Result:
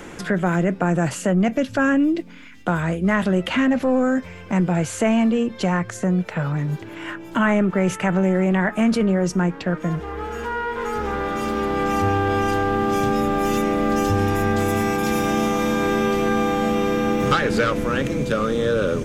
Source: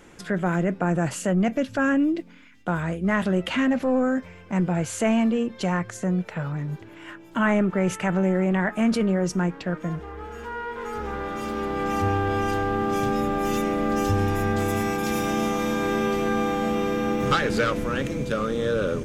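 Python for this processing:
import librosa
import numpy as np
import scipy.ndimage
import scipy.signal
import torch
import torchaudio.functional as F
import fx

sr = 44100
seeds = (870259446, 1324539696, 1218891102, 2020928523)

y = fx.band_squash(x, sr, depth_pct=40)
y = F.gain(torch.from_numpy(y), 3.5).numpy()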